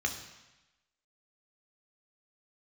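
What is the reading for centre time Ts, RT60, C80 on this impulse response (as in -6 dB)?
20 ms, 1.0 s, 10.5 dB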